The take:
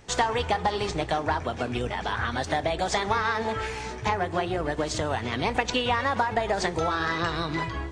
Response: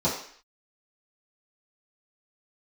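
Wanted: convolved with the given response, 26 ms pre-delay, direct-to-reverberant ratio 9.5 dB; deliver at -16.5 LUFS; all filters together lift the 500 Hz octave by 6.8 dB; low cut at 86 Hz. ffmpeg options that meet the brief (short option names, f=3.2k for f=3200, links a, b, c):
-filter_complex "[0:a]highpass=86,equalizer=f=500:t=o:g=8.5,asplit=2[a][b];[1:a]atrim=start_sample=2205,adelay=26[c];[b][c]afir=irnorm=-1:irlink=0,volume=-22dB[d];[a][d]amix=inputs=2:normalize=0,volume=6.5dB"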